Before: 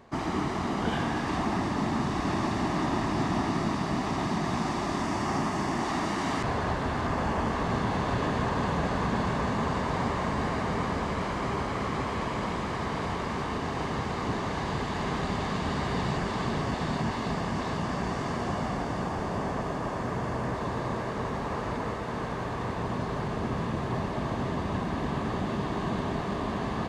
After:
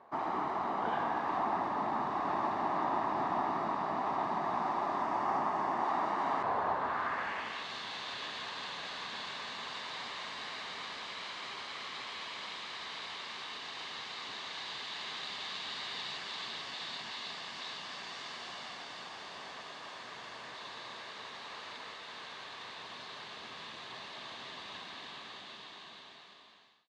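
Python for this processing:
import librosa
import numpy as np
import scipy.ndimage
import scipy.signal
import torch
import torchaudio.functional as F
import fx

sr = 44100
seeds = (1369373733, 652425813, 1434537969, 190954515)

y = fx.fade_out_tail(x, sr, length_s=2.12)
y = fx.peak_eq(y, sr, hz=3900.0, db=4.5, octaves=0.29)
y = fx.filter_sweep_bandpass(y, sr, from_hz=900.0, to_hz=3600.0, start_s=6.75, end_s=7.69, q=1.6)
y = y * 10.0 ** (1.5 / 20.0)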